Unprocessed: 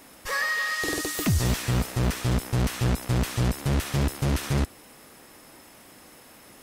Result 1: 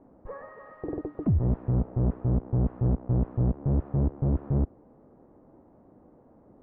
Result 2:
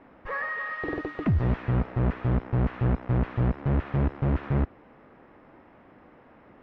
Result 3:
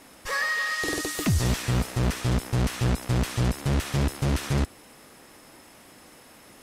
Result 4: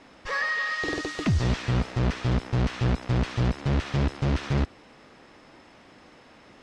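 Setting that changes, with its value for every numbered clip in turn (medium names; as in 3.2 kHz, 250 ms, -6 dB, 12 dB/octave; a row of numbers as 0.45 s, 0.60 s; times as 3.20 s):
Bessel low-pass, frequency: 560 Hz, 1.4 kHz, 12 kHz, 3.9 kHz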